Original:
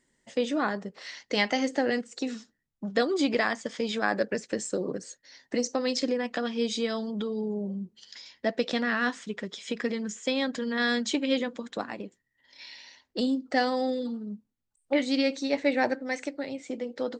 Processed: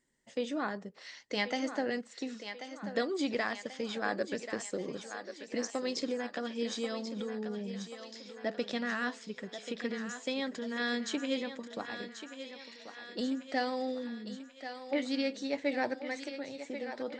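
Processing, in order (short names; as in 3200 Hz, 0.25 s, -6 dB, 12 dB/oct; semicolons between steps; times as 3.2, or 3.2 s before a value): thinning echo 1.086 s, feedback 59%, high-pass 360 Hz, level -9 dB; gain -7 dB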